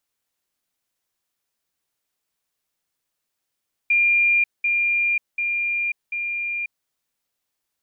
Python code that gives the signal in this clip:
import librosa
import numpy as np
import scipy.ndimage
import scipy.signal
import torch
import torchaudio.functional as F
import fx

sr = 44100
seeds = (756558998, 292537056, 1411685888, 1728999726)

y = fx.level_ladder(sr, hz=2400.0, from_db=-14.5, step_db=-3.0, steps=4, dwell_s=0.54, gap_s=0.2)